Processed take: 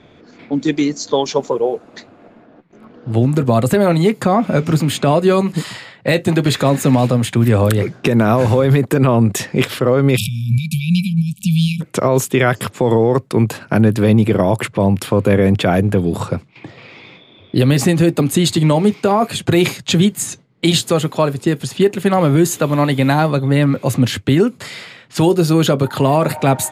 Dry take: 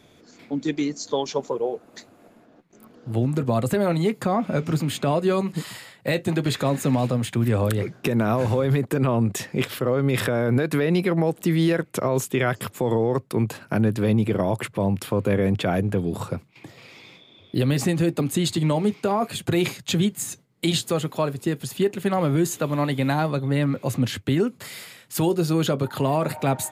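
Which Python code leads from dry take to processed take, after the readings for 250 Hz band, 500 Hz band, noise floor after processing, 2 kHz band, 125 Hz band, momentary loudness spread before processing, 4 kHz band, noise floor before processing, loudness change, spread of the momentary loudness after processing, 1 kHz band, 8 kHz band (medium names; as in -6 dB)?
+8.0 dB, +8.0 dB, -47 dBFS, +7.5 dB, +8.5 dB, 6 LU, +8.5 dB, -54 dBFS, +8.0 dB, 6 LU, +8.5 dB, +8.0 dB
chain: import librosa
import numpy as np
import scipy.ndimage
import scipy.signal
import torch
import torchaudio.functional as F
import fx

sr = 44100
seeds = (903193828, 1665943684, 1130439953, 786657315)

y = fx.env_lowpass(x, sr, base_hz=2900.0, full_db=-21.0)
y = fx.spec_erase(y, sr, start_s=10.17, length_s=1.64, low_hz=220.0, high_hz=2300.0)
y = y * librosa.db_to_amplitude(8.5)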